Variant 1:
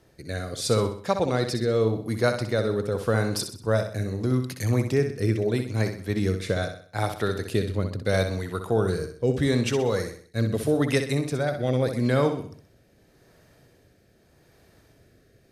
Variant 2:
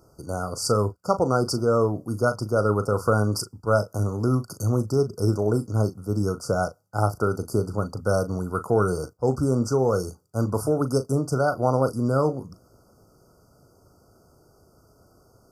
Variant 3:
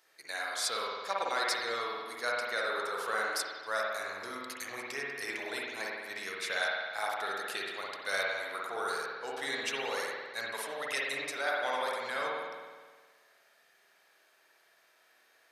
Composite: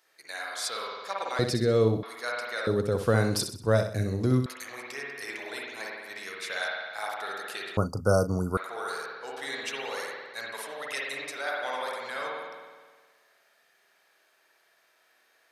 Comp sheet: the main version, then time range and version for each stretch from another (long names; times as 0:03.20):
3
0:01.39–0:02.03: punch in from 1
0:02.67–0:04.46: punch in from 1
0:07.77–0:08.57: punch in from 2